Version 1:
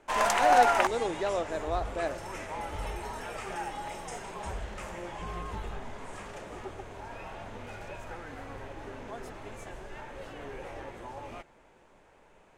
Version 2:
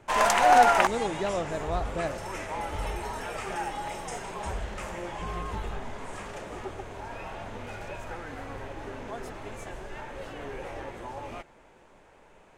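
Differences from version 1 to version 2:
speech: remove HPF 280 Hz 24 dB/oct; background +3.5 dB

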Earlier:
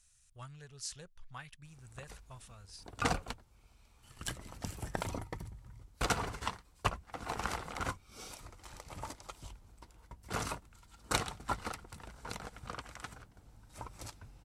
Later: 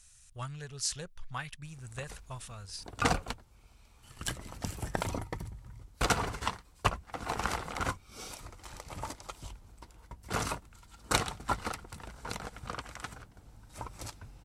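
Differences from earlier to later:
speech +9.0 dB; background +4.0 dB

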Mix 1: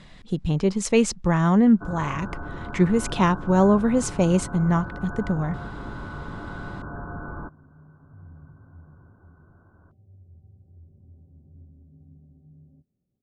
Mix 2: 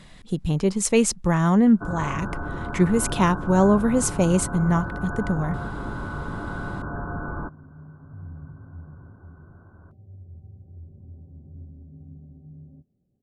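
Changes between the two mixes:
first sound +4.0 dB; second sound +7.0 dB; master: remove LPF 6200 Hz 12 dB/oct

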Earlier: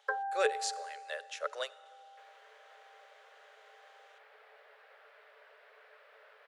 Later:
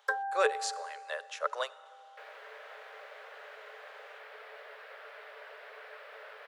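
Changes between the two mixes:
speech: add bell 1000 Hz +11 dB 0.82 oct; first sound: remove running mean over 14 samples; second sound +10.5 dB

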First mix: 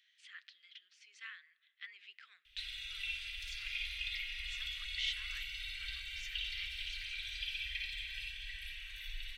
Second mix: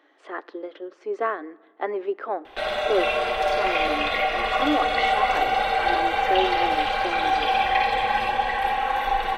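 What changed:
background +9.5 dB; master: remove inverse Chebyshev band-stop 210–910 Hz, stop band 60 dB

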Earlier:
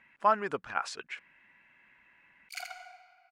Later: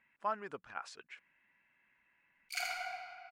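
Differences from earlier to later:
speech -11.0 dB; background: send +11.5 dB

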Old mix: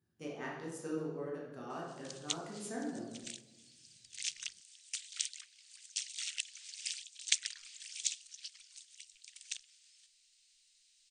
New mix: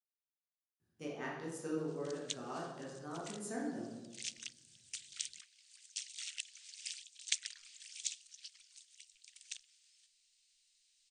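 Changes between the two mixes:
speech: entry +0.80 s; background -4.5 dB

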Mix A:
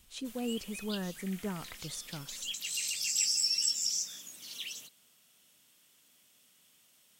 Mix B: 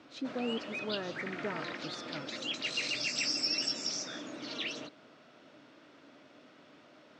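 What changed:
background: remove pre-emphasis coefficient 0.9; master: add speaker cabinet 150–5000 Hz, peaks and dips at 190 Hz -9 dB, 300 Hz +8 dB, 610 Hz +6 dB, 1400 Hz +5 dB, 3100 Hz -7 dB

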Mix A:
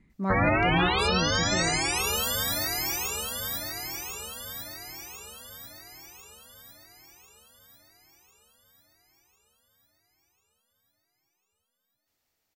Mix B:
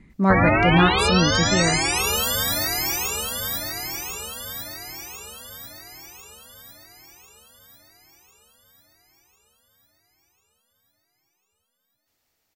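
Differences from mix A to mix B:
speech +10.5 dB; background +5.0 dB

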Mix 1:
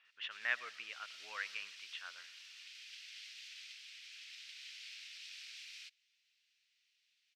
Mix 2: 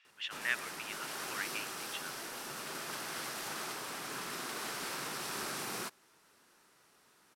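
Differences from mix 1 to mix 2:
background: remove steep high-pass 2400 Hz 36 dB/oct; master: remove air absorption 190 m

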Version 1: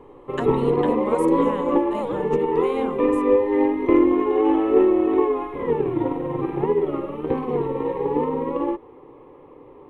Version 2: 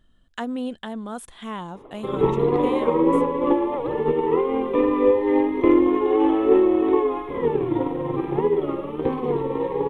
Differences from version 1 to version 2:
background: entry +1.75 s; master: add bell 3400 Hz +7.5 dB 0.21 oct

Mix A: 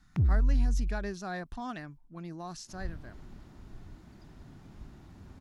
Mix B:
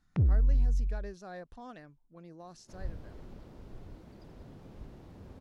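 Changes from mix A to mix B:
speech -10.5 dB; first sound: add air absorption 86 m; master: add bell 500 Hz +12 dB 0.56 oct

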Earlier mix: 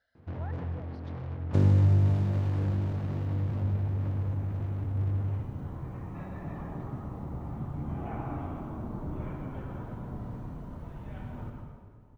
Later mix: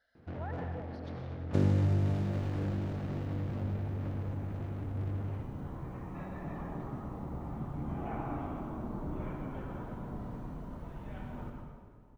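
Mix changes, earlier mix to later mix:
speech: send +10.5 dB; first sound: add bell 990 Hz -5 dB 0.34 oct; master: add bell 100 Hz -7 dB 0.91 oct

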